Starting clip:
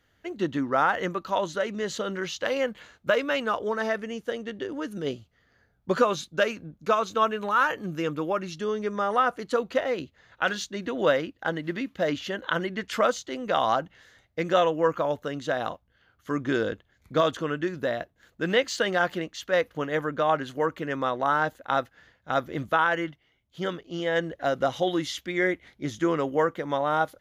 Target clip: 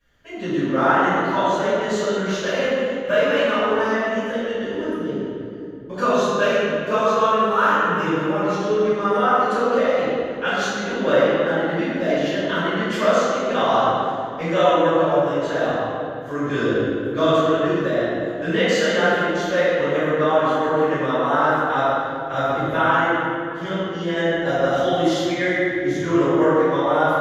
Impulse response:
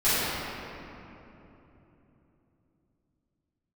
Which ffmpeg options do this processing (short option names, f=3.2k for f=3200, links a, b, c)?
-filter_complex "[0:a]asettb=1/sr,asplit=3[a][b][c];[a]atrim=end=4.834[d];[b]atrim=start=4.83:end=5.98,asetpts=PTS-STARTPTS,afade=t=in:d=0.004:c=qsin,afade=t=out:st=1.146:d=0.004:c=qsin,acrossover=split=220|1000[e][f][g];[e]acompressor=threshold=-40dB:ratio=4[h];[f]acompressor=threshold=-32dB:ratio=4[i];[g]acompressor=threshold=-52dB:ratio=4[j];[h][i][j]amix=inputs=3:normalize=0[k];[c]atrim=start=5.976[l];[d][k]acrossfade=d=0.004:c1=hsin:c2=qsin[m];[m][l]acrossfade=d=0.004:c1=qsin:c2=hsin[n];[1:a]atrim=start_sample=2205,asetrate=61740,aresample=44100[o];[n][o]afir=irnorm=-1:irlink=0,volume=-8dB"